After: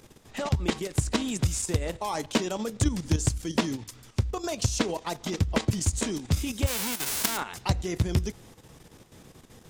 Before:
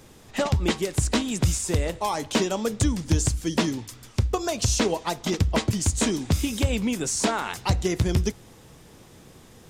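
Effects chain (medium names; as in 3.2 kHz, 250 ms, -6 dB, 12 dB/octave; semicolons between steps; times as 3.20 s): 6.66–7.36 s: formants flattened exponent 0.1; level held to a coarse grid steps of 10 dB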